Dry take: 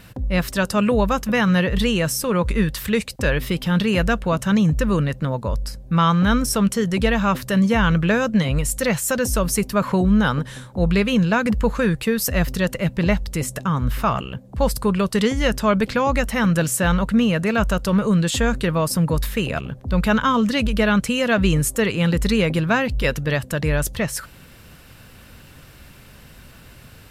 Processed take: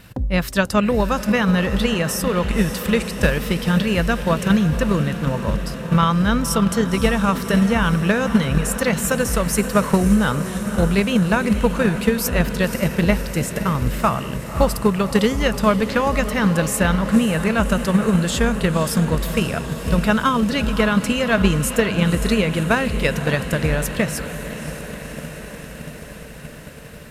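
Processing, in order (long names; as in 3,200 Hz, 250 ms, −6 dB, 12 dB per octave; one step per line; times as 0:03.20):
feedback delay with all-pass diffusion 544 ms, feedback 74%, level −10.5 dB
transient designer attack +7 dB, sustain +2 dB
level −1.5 dB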